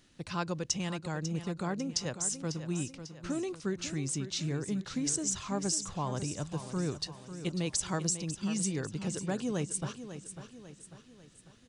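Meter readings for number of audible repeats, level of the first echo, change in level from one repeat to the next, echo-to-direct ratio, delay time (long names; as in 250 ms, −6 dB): 4, −11.0 dB, −6.5 dB, −10.0 dB, 546 ms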